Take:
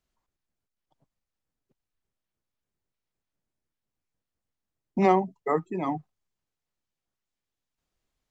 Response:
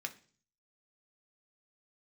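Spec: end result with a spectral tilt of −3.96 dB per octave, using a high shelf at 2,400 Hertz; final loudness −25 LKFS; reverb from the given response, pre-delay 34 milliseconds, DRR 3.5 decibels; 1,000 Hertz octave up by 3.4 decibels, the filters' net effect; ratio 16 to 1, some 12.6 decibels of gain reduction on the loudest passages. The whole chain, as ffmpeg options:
-filter_complex "[0:a]equalizer=frequency=1000:width_type=o:gain=5.5,highshelf=frequency=2400:gain=-4,acompressor=threshold=-25dB:ratio=16,asplit=2[link_01][link_02];[1:a]atrim=start_sample=2205,adelay=34[link_03];[link_02][link_03]afir=irnorm=-1:irlink=0,volume=-3.5dB[link_04];[link_01][link_04]amix=inputs=2:normalize=0,volume=7.5dB"

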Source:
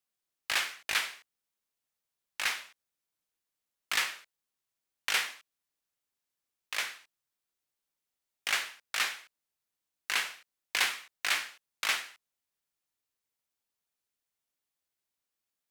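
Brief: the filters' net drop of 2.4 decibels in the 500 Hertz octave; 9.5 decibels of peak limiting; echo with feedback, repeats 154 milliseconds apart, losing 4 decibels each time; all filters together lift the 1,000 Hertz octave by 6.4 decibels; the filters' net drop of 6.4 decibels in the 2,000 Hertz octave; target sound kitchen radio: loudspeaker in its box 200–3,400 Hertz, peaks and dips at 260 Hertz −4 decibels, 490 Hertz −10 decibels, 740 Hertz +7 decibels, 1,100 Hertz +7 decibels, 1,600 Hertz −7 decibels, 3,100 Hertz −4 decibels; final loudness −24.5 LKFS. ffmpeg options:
ffmpeg -i in.wav -af "equalizer=frequency=500:width_type=o:gain=-8,equalizer=frequency=1000:width_type=o:gain=7,equalizer=frequency=2000:width_type=o:gain=-6,alimiter=level_in=0.5dB:limit=-24dB:level=0:latency=1,volume=-0.5dB,highpass=200,equalizer=frequency=260:width_type=q:width=4:gain=-4,equalizer=frequency=490:width_type=q:width=4:gain=-10,equalizer=frequency=740:width_type=q:width=4:gain=7,equalizer=frequency=1100:width_type=q:width=4:gain=7,equalizer=frequency=1600:width_type=q:width=4:gain=-7,equalizer=frequency=3100:width_type=q:width=4:gain=-4,lowpass=frequency=3400:width=0.5412,lowpass=frequency=3400:width=1.3066,aecho=1:1:154|308|462|616|770|924|1078|1232|1386:0.631|0.398|0.25|0.158|0.0994|0.0626|0.0394|0.0249|0.0157,volume=15.5dB" out.wav

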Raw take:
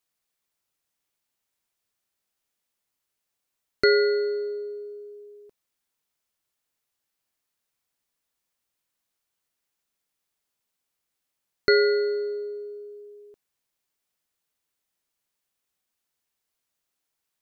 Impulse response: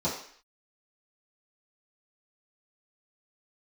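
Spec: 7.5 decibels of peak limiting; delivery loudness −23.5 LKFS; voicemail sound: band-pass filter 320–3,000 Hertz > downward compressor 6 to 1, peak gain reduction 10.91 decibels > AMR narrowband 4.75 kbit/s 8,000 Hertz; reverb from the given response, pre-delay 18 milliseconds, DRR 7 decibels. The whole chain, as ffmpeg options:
-filter_complex "[0:a]alimiter=limit=-15.5dB:level=0:latency=1,asplit=2[link_01][link_02];[1:a]atrim=start_sample=2205,adelay=18[link_03];[link_02][link_03]afir=irnorm=-1:irlink=0,volume=-16dB[link_04];[link_01][link_04]amix=inputs=2:normalize=0,highpass=320,lowpass=3000,acompressor=threshold=-32dB:ratio=6,volume=14dB" -ar 8000 -c:a libopencore_amrnb -b:a 4750

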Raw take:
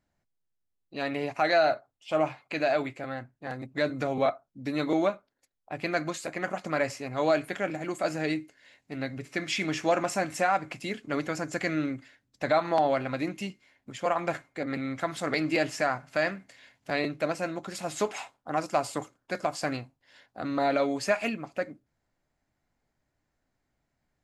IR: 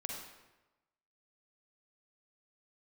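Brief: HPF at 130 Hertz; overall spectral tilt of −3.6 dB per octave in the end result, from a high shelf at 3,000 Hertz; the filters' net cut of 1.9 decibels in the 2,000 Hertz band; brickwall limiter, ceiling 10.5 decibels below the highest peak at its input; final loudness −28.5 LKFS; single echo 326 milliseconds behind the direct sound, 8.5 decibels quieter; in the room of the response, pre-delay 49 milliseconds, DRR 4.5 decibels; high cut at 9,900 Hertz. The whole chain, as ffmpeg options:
-filter_complex "[0:a]highpass=130,lowpass=9900,equalizer=frequency=2000:width_type=o:gain=-5.5,highshelf=frequency=3000:gain=8.5,alimiter=limit=-22dB:level=0:latency=1,aecho=1:1:326:0.376,asplit=2[link_01][link_02];[1:a]atrim=start_sample=2205,adelay=49[link_03];[link_02][link_03]afir=irnorm=-1:irlink=0,volume=-4.5dB[link_04];[link_01][link_04]amix=inputs=2:normalize=0,volume=4dB"

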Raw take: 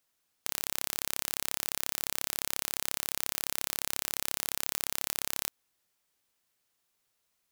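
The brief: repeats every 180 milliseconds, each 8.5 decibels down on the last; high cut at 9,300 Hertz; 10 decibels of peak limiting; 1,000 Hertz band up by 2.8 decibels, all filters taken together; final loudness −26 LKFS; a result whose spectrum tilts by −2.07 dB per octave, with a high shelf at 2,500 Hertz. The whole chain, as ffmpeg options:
ffmpeg -i in.wav -af "lowpass=9300,equalizer=frequency=1000:width_type=o:gain=4.5,highshelf=frequency=2500:gain=-5.5,alimiter=limit=-23.5dB:level=0:latency=1,aecho=1:1:180|360|540|720:0.376|0.143|0.0543|0.0206,volume=23dB" out.wav

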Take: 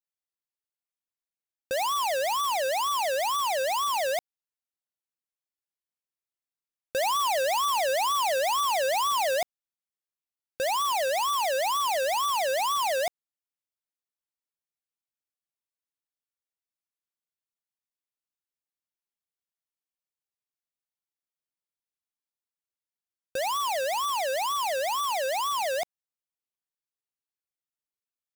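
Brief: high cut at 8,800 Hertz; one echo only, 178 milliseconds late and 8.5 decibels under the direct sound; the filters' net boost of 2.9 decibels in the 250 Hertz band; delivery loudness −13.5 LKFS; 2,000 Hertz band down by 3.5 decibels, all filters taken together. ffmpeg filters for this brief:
ffmpeg -i in.wav -af "lowpass=8800,equalizer=frequency=250:width_type=o:gain=4,equalizer=frequency=2000:width_type=o:gain=-4.5,aecho=1:1:178:0.376,volume=13.5dB" out.wav

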